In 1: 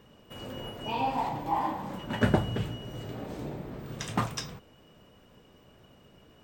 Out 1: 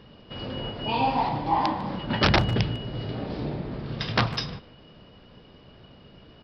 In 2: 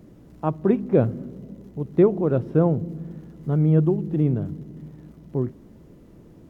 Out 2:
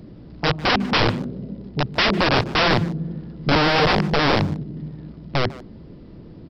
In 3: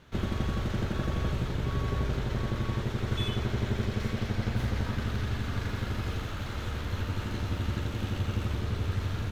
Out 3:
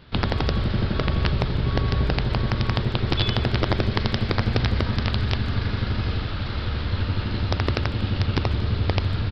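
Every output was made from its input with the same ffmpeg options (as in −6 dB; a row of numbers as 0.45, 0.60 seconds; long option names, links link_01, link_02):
-filter_complex "[0:a]bass=frequency=250:gain=3,treble=frequency=4000:gain=9,aresample=11025,aeval=exprs='(mod(7.5*val(0)+1,2)-1)/7.5':channel_layout=same,aresample=44100,asplit=2[link_01][link_02];[link_02]adelay=150,highpass=300,lowpass=3400,asoftclip=type=hard:threshold=-21dB,volume=-16dB[link_03];[link_01][link_03]amix=inputs=2:normalize=0,volume=5dB"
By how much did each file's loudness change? +5.5, +2.0, +7.5 LU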